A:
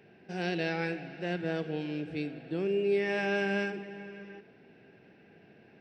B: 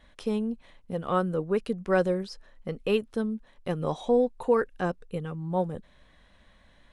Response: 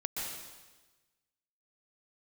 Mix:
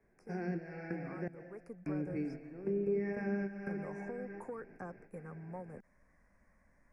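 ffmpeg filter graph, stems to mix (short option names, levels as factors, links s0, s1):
-filter_complex "[0:a]lowpass=4200,flanger=delay=9:depth=9.7:regen=-64:speed=0.62:shape=triangular,volume=1.41,asplit=3[s0][s1][s2];[s0]atrim=end=1.28,asetpts=PTS-STARTPTS,afade=t=out:st=1.276:d=0.004:c=hsin[s3];[s1]atrim=start=1.28:end=1.86,asetpts=PTS-STARTPTS,volume=0[s4];[s2]atrim=start=1.86,asetpts=PTS-STARTPTS,afade=t=in:d=0.004:c=hsin[s5];[s3][s4][s5]concat=n=3:v=0:a=1,asplit=2[s6][s7];[s7]volume=0.188[s8];[1:a]equalizer=f=210:w=1.5:g=3,acrossover=split=85|490|2000[s9][s10][s11][s12];[s9]acompressor=threshold=0.002:ratio=4[s13];[s10]acompressor=threshold=0.0126:ratio=4[s14];[s11]acompressor=threshold=0.0355:ratio=4[s15];[s12]acompressor=threshold=0.00282:ratio=4[s16];[s13][s14][s15][s16]amix=inputs=4:normalize=0,asoftclip=type=tanh:threshold=0.0841,volume=0.316,afade=t=in:st=1.52:d=0.29:silence=0.398107,asplit=2[s17][s18];[s18]apad=whole_len=255947[s19];[s6][s19]sidechaingate=range=0.0224:threshold=0.00126:ratio=16:detection=peak[s20];[2:a]atrim=start_sample=2205[s21];[s8][s21]afir=irnorm=-1:irlink=0[s22];[s20][s17][s22]amix=inputs=3:normalize=0,acrossover=split=320[s23][s24];[s24]acompressor=threshold=0.00708:ratio=5[s25];[s23][s25]amix=inputs=2:normalize=0,asuperstop=centerf=3400:order=8:qfactor=1.3"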